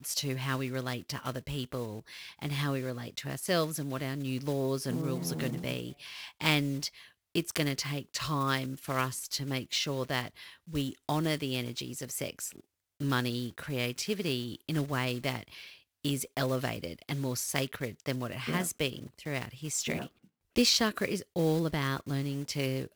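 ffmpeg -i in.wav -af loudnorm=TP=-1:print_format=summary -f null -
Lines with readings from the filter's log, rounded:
Input Integrated:    -32.4 LUFS
Input True Peak:      -9.9 dBTP
Input LRA:             4.4 LU
Input Threshold:     -42.7 LUFS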